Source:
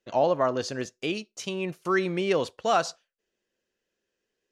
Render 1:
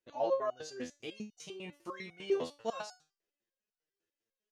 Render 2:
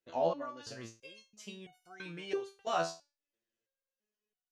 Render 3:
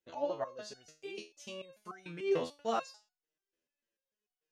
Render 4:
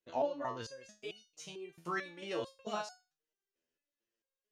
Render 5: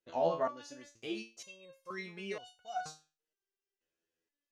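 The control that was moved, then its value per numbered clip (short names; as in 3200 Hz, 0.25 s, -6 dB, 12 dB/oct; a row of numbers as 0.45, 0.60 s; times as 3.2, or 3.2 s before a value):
stepped resonator, rate: 10, 3, 6.8, 4.5, 2.1 Hz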